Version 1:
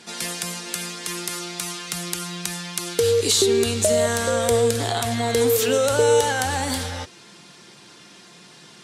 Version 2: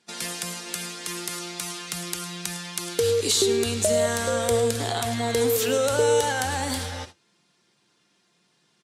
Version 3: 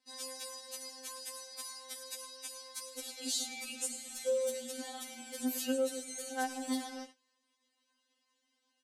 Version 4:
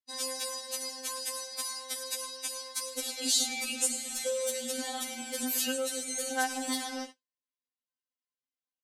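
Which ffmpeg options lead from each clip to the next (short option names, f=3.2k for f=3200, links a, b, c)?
-af "aecho=1:1:106:0.158,agate=range=-17dB:threshold=-37dB:ratio=16:detection=peak,volume=-3dB"
-filter_complex "[0:a]acrossover=split=510|4200[a][b][c];[b]alimiter=limit=-24dB:level=0:latency=1:release=236[d];[a][d][c]amix=inputs=3:normalize=0,afftfilt=real='re*3.46*eq(mod(b,12),0)':imag='im*3.46*eq(mod(b,12),0)':win_size=2048:overlap=0.75,volume=-9dB"
-filter_complex "[0:a]agate=range=-33dB:threshold=-48dB:ratio=3:detection=peak,acrossover=split=910[a][b];[a]acompressor=threshold=-43dB:ratio=6[c];[c][b]amix=inputs=2:normalize=0,volume=8.5dB"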